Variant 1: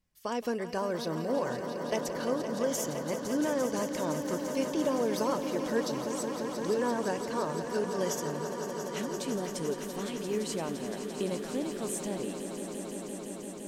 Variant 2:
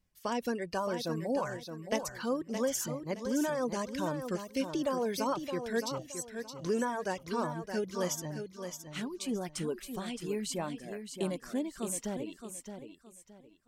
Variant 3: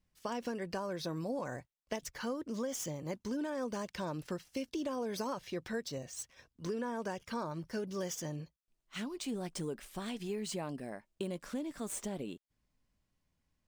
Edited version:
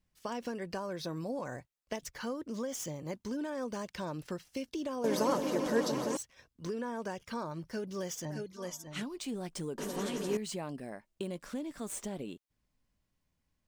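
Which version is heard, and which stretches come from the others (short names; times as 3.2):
3
5.04–6.17 from 1
8.25–9.03 from 2
9.78–10.37 from 1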